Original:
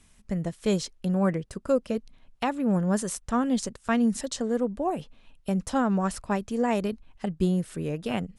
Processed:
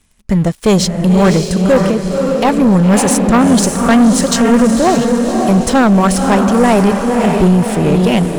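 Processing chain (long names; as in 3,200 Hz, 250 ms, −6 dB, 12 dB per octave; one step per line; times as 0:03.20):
feedback delay with all-pass diffusion 560 ms, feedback 47%, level −5.5 dB
0:01.88–0:02.45: downward compressor, threshold −28 dBFS, peak gain reduction 6 dB
leveller curve on the samples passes 3
level +7.5 dB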